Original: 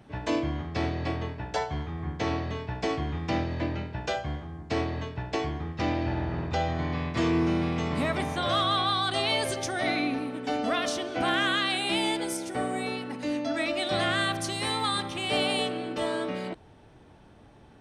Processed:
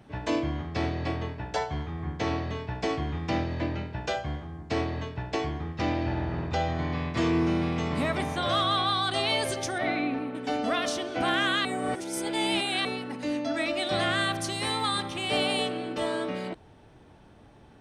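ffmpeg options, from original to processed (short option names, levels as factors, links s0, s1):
-filter_complex "[0:a]asettb=1/sr,asplit=3[s0][s1][s2];[s0]atrim=end=9.784[s3];[s1]atrim=start=9.78:end=10.35,asetpts=PTS-STARTPTS,afade=t=in:d=0.004:c=qsin,afade=t=out:st=0.566:d=0.004:c=qsin,bass=f=250:g=-1,treble=f=4000:g=-15[s4];[s2]atrim=start=10.346[s5];[s3][s4]acrossfade=d=0.004:c1=hsin:c2=qsin[s6];[s6][s5]acrossfade=d=0.004:c1=qsin:c2=hsin,asplit=3[s7][s8][s9];[s7]atrim=end=11.652[s10];[s8]atrim=start=11.648:end=12.852,asetpts=PTS-STARTPTS,areverse[s11];[s9]atrim=start=12.848[s12];[s10][s11]acrossfade=d=0.004:c1=hsin:c2=hsin[s13];[s13][s12]acrossfade=d=0.004:c1=hsin:c2=hsin"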